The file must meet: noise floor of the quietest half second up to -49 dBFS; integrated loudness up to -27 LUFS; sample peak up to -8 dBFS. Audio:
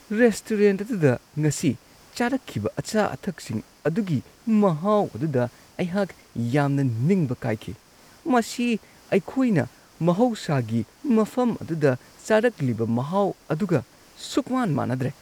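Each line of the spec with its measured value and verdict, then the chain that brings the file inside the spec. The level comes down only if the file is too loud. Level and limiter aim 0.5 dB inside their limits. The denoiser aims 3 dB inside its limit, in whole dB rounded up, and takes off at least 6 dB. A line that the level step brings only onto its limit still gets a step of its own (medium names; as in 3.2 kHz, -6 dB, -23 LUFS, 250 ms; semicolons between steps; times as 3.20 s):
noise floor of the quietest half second -52 dBFS: pass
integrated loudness -24.5 LUFS: fail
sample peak -5.5 dBFS: fail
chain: trim -3 dB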